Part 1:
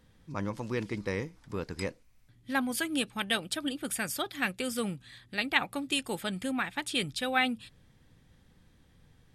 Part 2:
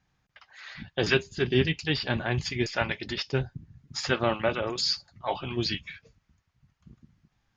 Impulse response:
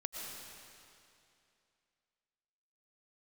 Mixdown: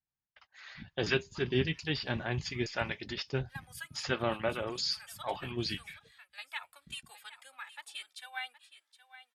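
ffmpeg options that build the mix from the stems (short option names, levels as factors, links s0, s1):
-filter_complex "[0:a]highpass=f=840:w=0.5412,highpass=f=840:w=1.3066,deesser=0.45,asplit=2[s0][s1];[s1]adelay=2.1,afreqshift=0.8[s2];[s0][s2]amix=inputs=2:normalize=1,adelay=1000,volume=0.355,asplit=2[s3][s4];[s4]volume=0.188[s5];[1:a]agate=range=0.0891:threshold=0.002:ratio=16:detection=peak,volume=0.501,asplit=2[s6][s7];[s7]apad=whole_len=456250[s8];[s3][s8]sidechaincompress=threshold=0.00562:ratio=5:attack=29:release=158[s9];[s5]aecho=0:1:768:1[s10];[s9][s6][s10]amix=inputs=3:normalize=0"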